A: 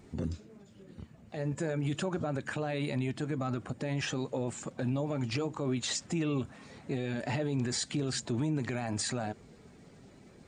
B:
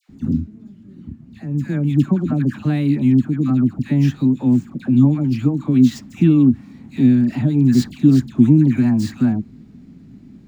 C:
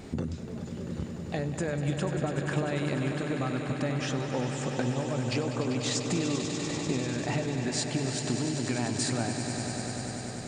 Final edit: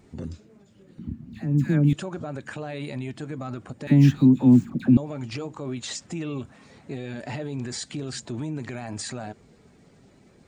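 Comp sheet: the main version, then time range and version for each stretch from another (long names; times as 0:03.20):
A
0:00.99–0:01.93: punch in from B
0:03.87–0:04.97: punch in from B
not used: C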